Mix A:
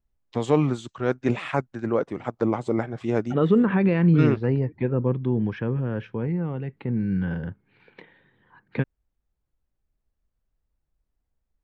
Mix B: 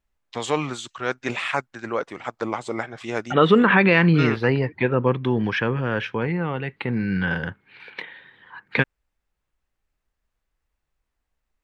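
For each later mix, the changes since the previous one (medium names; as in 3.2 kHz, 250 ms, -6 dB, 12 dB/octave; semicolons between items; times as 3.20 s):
second voice +8.5 dB; master: add tilt shelf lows -9.5 dB, about 700 Hz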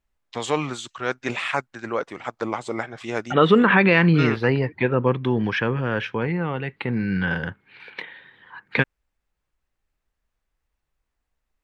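no change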